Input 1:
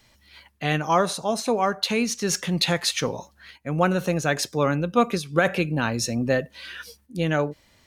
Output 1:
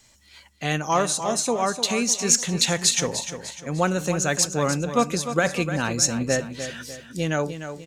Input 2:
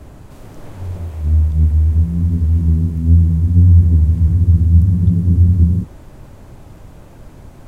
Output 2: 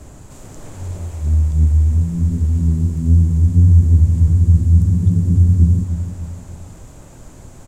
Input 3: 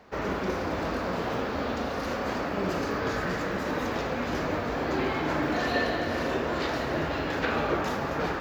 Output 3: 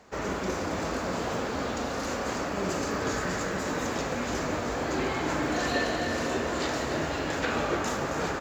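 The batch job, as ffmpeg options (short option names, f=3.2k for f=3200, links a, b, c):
-filter_complex "[0:a]equalizer=f=7.3k:t=o:w=0.64:g=15,asplit=2[a][b];[b]aecho=0:1:300|600|900|1200:0.316|0.133|0.0558|0.0234[c];[a][c]amix=inputs=2:normalize=0,volume=-1.5dB"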